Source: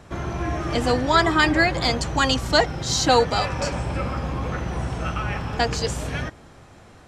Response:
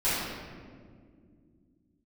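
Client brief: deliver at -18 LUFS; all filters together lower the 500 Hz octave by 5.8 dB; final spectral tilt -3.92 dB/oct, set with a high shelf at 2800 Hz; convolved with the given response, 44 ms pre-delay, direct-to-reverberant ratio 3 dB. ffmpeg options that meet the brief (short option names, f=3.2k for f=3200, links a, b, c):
-filter_complex "[0:a]equalizer=f=500:t=o:g=-7.5,highshelf=f=2.8k:g=3,asplit=2[a][b];[1:a]atrim=start_sample=2205,adelay=44[c];[b][c]afir=irnorm=-1:irlink=0,volume=-16dB[d];[a][d]amix=inputs=2:normalize=0,volume=2.5dB"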